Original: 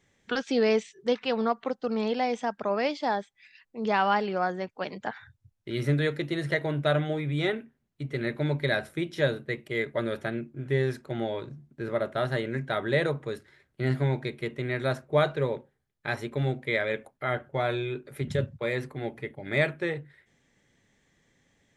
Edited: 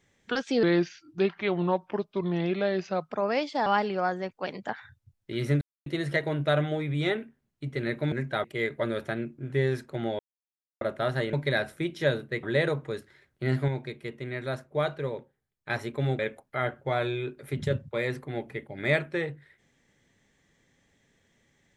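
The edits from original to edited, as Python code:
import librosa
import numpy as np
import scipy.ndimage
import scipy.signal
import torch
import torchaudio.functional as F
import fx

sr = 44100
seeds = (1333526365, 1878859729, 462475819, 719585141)

y = fx.edit(x, sr, fx.speed_span(start_s=0.63, length_s=1.96, speed=0.79),
    fx.cut(start_s=3.14, length_s=0.9),
    fx.silence(start_s=5.99, length_s=0.25),
    fx.swap(start_s=8.5, length_s=1.1, other_s=12.49, other_length_s=0.32),
    fx.silence(start_s=11.35, length_s=0.62),
    fx.clip_gain(start_s=14.06, length_s=2.01, db=-4.5),
    fx.cut(start_s=16.57, length_s=0.3), tone=tone)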